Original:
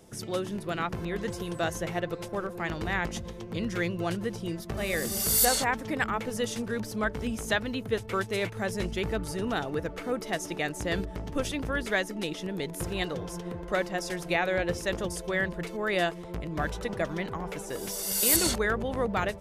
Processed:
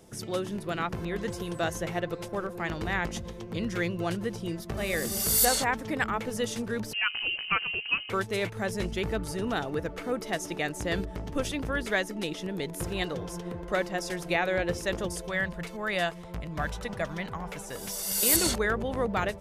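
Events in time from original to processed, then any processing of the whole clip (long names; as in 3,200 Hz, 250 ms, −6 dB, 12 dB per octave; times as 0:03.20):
0:06.93–0:08.10: voice inversion scrambler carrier 3,000 Hz
0:15.28–0:18.18: parametric band 360 Hz −8.5 dB 0.81 octaves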